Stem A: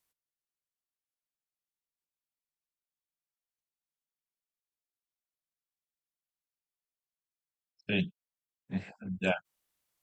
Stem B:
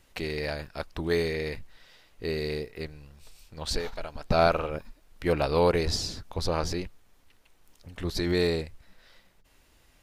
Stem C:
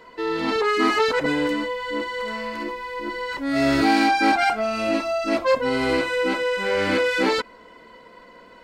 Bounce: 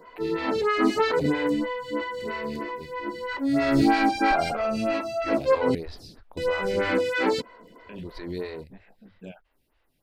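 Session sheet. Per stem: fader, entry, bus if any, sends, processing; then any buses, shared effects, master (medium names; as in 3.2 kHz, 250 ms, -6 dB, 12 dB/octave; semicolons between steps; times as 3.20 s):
-3.5 dB, 0.00 s, no send, treble shelf 6.3 kHz -10 dB; compression 1.5:1, threshold -40 dBFS, peak gain reduction 6 dB
-5.5 dB, 0.00 s, no send, peaking EQ 6.9 kHz -13.5 dB 0.69 oct
-1.5 dB, 0.00 s, muted 5.75–6.37 s, no send, high-pass 52 Hz; peaking EQ 120 Hz +10 dB 1.8 oct; attacks held to a fixed rise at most 420 dB/s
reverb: none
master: lamp-driven phase shifter 3.1 Hz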